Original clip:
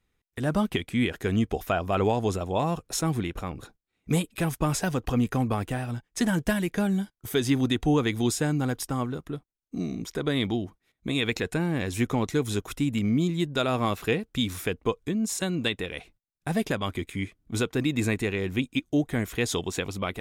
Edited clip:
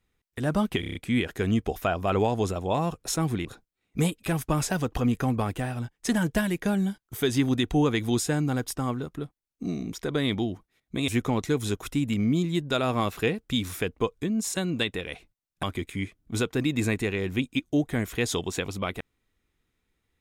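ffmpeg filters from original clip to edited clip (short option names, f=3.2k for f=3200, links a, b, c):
-filter_complex "[0:a]asplit=9[a][b][c][d][e][f][g][h][i];[a]atrim=end=0.832[j];[b]atrim=start=0.798:end=0.832[k];[c]atrim=start=0.798:end=0.832[l];[d]atrim=start=0.798:end=0.832[m];[e]atrim=start=0.798:end=0.832[n];[f]atrim=start=0.798:end=3.302[o];[g]atrim=start=3.568:end=11.202[p];[h]atrim=start=11.928:end=16.482[q];[i]atrim=start=16.828[r];[j][k]acrossfade=d=0.004:c1=hsin:c2=hsin[s];[s][l]acrossfade=d=0.004:c1=hsin:c2=hsin[t];[t][m]acrossfade=d=0.004:c1=hsin:c2=hsin[u];[u][n]acrossfade=d=0.004:c1=hsin:c2=hsin[v];[v][o]acrossfade=d=0.004:c1=hsin:c2=hsin[w];[w][p]acrossfade=d=0.004:c1=hsin:c2=hsin[x];[x][q]acrossfade=d=0.004:c1=hsin:c2=hsin[y];[y][r]acrossfade=d=0.004:c1=hsin:c2=hsin"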